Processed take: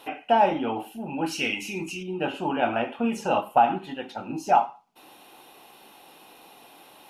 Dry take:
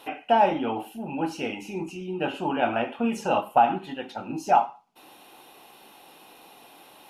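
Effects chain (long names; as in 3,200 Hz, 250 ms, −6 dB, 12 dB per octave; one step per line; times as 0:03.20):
0:01.26–0:02.03: drawn EQ curve 280 Hz 0 dB, 840 Hz −6 dB, 2,200 Hz +9 dB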